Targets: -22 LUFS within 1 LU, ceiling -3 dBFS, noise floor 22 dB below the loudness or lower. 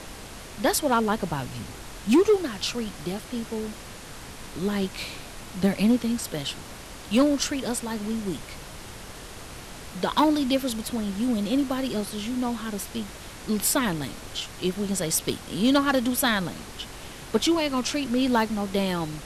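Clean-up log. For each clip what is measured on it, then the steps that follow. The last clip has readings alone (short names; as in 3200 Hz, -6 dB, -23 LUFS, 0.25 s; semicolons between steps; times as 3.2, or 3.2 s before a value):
clipped 0.2%; flat tops at -13.5 dBFS; noise floor -42 dBFS; noise floor target -48 dBFS; loudness -26.0 LUFS; peak -13.5 dBFS; loudness target -22.0 LUFS
-> clip repair -13.5 dBFS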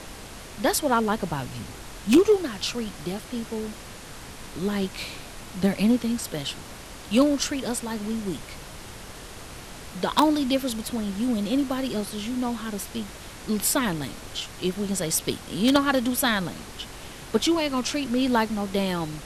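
clipped 0.0%; noise floor -42 dBFS; noise floor target -48 dBFS
-> noise print and reduce 6 dB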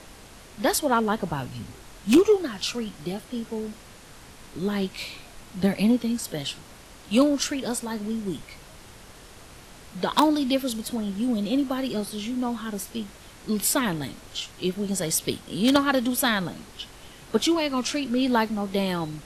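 noise floor -47 dBFS; noise floor target -48 dBFS
-> noise print and reduce 6 dB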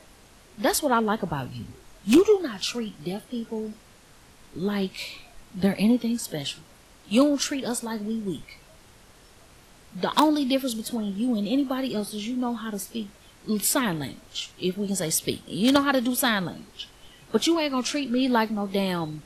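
noise floor -53 dBFS; loudness -25.5 LUFS; peak -4.5 dBFS; loudness target -22.0 LUFS
-> gain +3.5 dB; limiter -3 dBFS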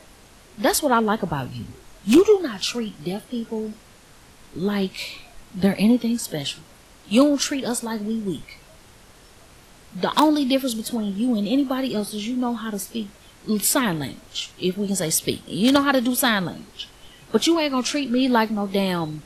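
loudness -22.0 LUFS; peak -3.0 dBFS; noise floor -50 dBFS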